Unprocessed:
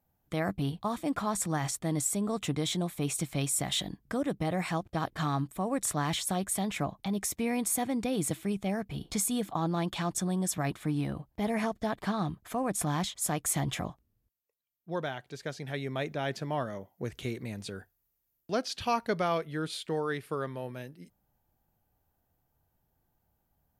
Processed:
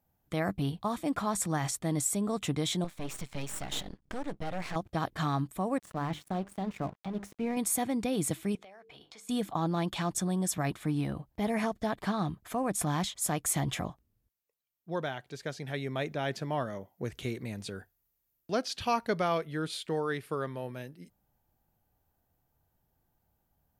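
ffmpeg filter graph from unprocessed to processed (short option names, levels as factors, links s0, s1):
-filter_complex "[0:a]asettb=1/sr,asplit=3[s0][s1][s2];[s0]atrim=end=2.844[s3];[s1]atrim=start=2.84:end=4.76,asetpts=PTS-STARTPTS,afade=t=in:d=0.004:c=qsin,afade=t=out:st=1.916:d=0.004:c=qsin,lowpass=7100,aeval=exprs='max(val(0),0)':c=same[s4];[s2]atrim=start=4.756[s5];[s3][s4]acrossfade=d=0.004:c1=hsin:c2=qsin[s6];[s6][s5]acrossfade=d=0.004:c1=qsin:c2=hsin,asettb=1/sr,asplit=3[s7][s8][s9];[s7]atrim=end=5.784[s10];[s8]atrim=start=5.78:end=7.57,asetpts=PTS-STARTPTS,afade=t=in:d=0.004:c=qsin,afade=t=out:st=1.786:d=0.004:c=qsin,lowpass=f=1100:p=1,bandreject=f=50:t=h:w=6,bandreject=f=100:t=h:w=6,bandreject=f=150:t=h:w=6,bandreject=f=200:t=h:w=6,bandreject=f=250:t=h:w=6,bandreject=f=300:t=h:w=6,bandreject=f=350:t=h:w=6,bandreject=f=400:t=h:w=6,aeval=exprs='sgn(val(0))*max(abs(val(0))-0.00422,0)':c=same[s11];[s9]atrim=start=7.566[s12];[s10][s11]acrossfade=d=0.004:c1=hsin:c2=qsin[s13];[s13][s12]acrossfade=d=0.004:c1=qsin:c2=hsin,asettb=1/sr,asplit=3[s14][s15][s16];[s14]atrim=end=8.554[s17];[s15]atrim=start=8.55:end=9.29,asetpts=PTS-STARTPTS,afade=t=in:d=0.004:c=qsin,afade=t=out:st=0.736:d=0.004:c=qsin,acrossover=split=430 5300:gain=0.0794 1 0.2[s18][s19][s20];[s18][s19][s20]amix=inputs=3:normalize=0,bandreject=f=50:t=h:w=6,bandreject=f=100:t=h:w=6,bandreject=f=150:t=h:w=6,bandreject=f=200:t=h:w=6,bandreject=f=250:t=h:w=6,bandreject=f=300:t=h:w=6,bandreject=f=350:t=h:w=6,bandreject=f=400:t=h:w=6,bandreject=f=450:t=h:w=6,bandreject=f=500:t=h:w=6,acompressor=threshold=0.00398:ratio=16:attack=3.2:release=140:knee=1:detection=peak[s21];[s16]atrim=start=9.286[s22];[s17][s21]acrossfade=d=0.004:c1=hsin:c2=qsin[s23];[s23][s22]acrossfade=d=0.004:c1=qsin:c2=hsin"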